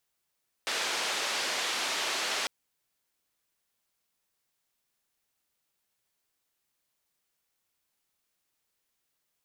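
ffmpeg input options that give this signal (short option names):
-f lavfi -i "anoisesrc=c=white:d=1.8:r=44100:seed=1,highpass=f=400,lowpass=f=4800,volume=-20dB"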